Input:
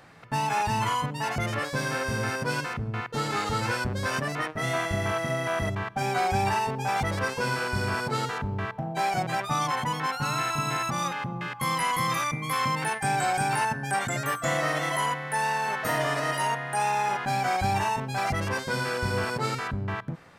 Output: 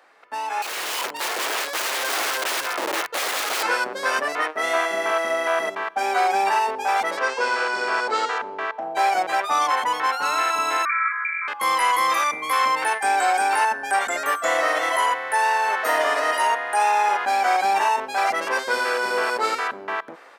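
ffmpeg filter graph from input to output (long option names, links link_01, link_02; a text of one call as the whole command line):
ffmpeg -i in.wav -filter_complex "[0:a]asettb=1/sr,asplit=3[link_01][link_02][link_03];[link_01]atrim=end=0.624[link_04];[link_02]atrim=start=0.62:end=3.63,asetpts=PTS-STARTPTS,afade=type=in:duration=0.004:curve=qsin,afade=type=out:start_time=3.006:duration=0.004:curve=qsin,asubboost=boost=8.5:cutoff=100,highpass=frequency=60:width=0.5412,highpass=frequency=60:width=1.3066,aeval=exprs='(mod(18.8*val(0)+1,2)-1)/18.8':channel_layout=same[link_05];[link_03]atrim=start=3.626[link_06];[link_04][link_05]acrossfade=duration=0.004:curve1=hsin:curve2=qsin[link_07];[link_07][link_06]acrossfade=duration=0.004:curve1=qsin:curve2=hsin,asettb=1/sr,asplit=3[link_08][link_09][link_10];[link_08]atrim=end=7.174[link_11];[link_09]atrim=start=7.17:end=8.82,asetpts=PTS-STARTPTS,afade=type=in:duration=0.004:curve=qsin,afade=type=out:start_time=1.646:duration=0.004:curve=qsin,lowpass=frequency=7900:width=0.5412,lowpass=frequency=7900:width=1.3066,equalizer=frequency=170:width_type=o:width=0.7:gain=-5.5[link_12];[link_10]atrim=start=8.816[link_13];[link_11][link_12]acrossfade=duration=0.004:curve1=hsin:curve2=qsin[link_14];[link_14][link_13]acrossfade=duration=0.004:curve1=qsin:curve2=hsin,asettb=1/sr,asplit=3[link_15][link_16][link_17];[link_15]atrim=end=10.854[link_18];[link_16]atrim=start=10.85:end=11.48,asetpts=PTS-STARTPTS,afade=type=in:duration=0.004:curve=qsin,afade=type=out:start_time=0.626:duration=0.004:curve=qsin,asuperstop=centerf=1900:order=20:qfactor=2,lowpass=frequency=2100:width_type=q:width=0.5098,lowpass=frequency=2100:width_type=q:width=0.6013,lowpass=frequency=2100:width_type=q:width=0.9,lowpass=frequency=2100:width_type=q:width=2.563,afreqshift=-2500[link_19];[link_17]atrim=start=11.476[link_20];[link_18][link_19]acrossfade=duration=0.004:curve1=hsin:curve2=qsin[link_21];[link_21][link_20]acrossfade=duration=0.004:curve1=qsin:curve2=hsin,highpass=frequency=350:width=0.5412,highpass=frequency=350:width=1.3066,equalizer=frequency=1100:width=0.42:gain=4.5,dynaudnorm=framelen=550:gausssize=3:maxgain=9.5dB,volume=-5.5dB" out.wav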